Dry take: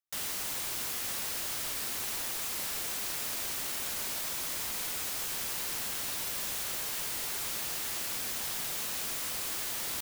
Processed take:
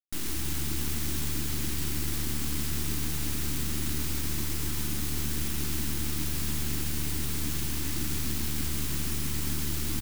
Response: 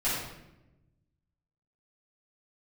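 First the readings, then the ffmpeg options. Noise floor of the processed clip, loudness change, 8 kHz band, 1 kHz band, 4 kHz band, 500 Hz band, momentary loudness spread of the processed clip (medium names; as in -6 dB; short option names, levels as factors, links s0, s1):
-30 dBFS, +1.5 dB, 0.0 dB, -2.0 dB, 0.0 dB, +2.5 dB, 0 LU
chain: -filter_complex "[0:a]aeval=exprs='0.0891*(cos(1*acos(clip(val(0)/0.0891,-1,1)))-cos(1*PI/2))+0.0126*(cos(6*acos(clip(val(0)/0.0891,-1,1)))-cos(6*PI/2))+0.0112*(cos(7*acos(clip(val(0)/0.0891,-1,1)))-cos(7*PI/2))+0.0224*(cos(8*acos(clip(val(0)/0.0891,-1,1)))-cos(8*PI/2))':c=same,lowshelf=f=410:t=q:w=3:g=10,asplit=8[s0][s1][s2][s3][s4][s5][s6][s7];[s1]adelay=131,afreqshift=-74,volume=0.473[s8];[s2]adelay=262,afreqshift=-148,volume=0.254[s9];[s3]adelay=393,afreqshift=-222,volume=0.138[s10];[s4]adelay=524,afreqshift=-296,volume=0.0741[s11];[s5]adelay=655,afreqshift=-370,volume=0.0403[s12];[s6]adelay=786,afreqshift=-444,volume=0.0216[s13];[s7]adelay=917,afreqshift=-518,volume=0.0117[s14];[s0][s8][s9][s10][s11][s12][s13][s14]amix=inputs=8:normalize=0"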